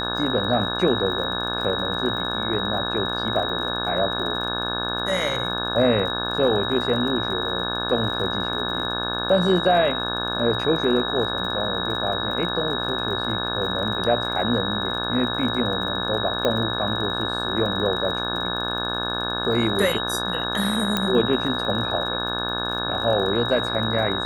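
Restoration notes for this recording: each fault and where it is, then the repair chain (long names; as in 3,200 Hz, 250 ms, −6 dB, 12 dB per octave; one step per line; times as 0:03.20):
mains buzz 60 Hz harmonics 29 −29 dBFS
surface crackle 42 per second −32 dBFS
whistle 3,800 Hz −27 dBFS
0:16.45: click −9 dBFS
0:20.97: click −7 dBFS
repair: click removal
hum removal 60 Hz, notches 29
notch filter 3,800 Hz, Q 30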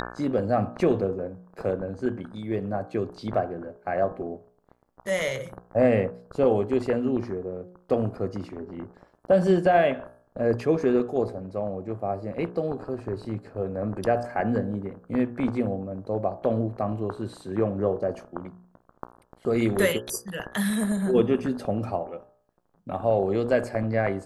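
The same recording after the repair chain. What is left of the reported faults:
none of them is left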